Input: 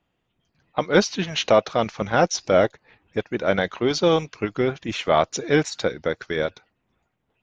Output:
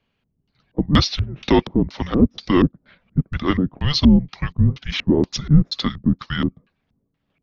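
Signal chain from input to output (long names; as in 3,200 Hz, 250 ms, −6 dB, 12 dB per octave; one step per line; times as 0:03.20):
auto-filter low-pass square 2.1 Hz 480–4,500 Hz
frequency shifter −280 Hz
level +1 dB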